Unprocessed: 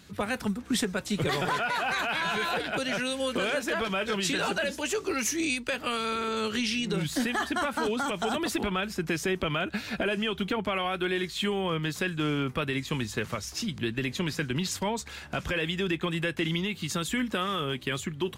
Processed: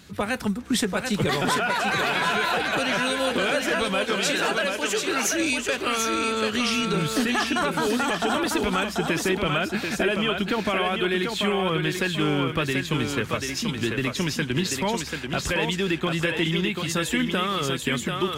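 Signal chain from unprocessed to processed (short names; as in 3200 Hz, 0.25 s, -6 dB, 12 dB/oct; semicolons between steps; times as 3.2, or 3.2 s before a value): 4.04–5.34 low shelf 160 Hz -9.5 dB; thinning echo 0.738 s, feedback 29%, high-pass 220 Hz, level -4 dB; gain +4 dB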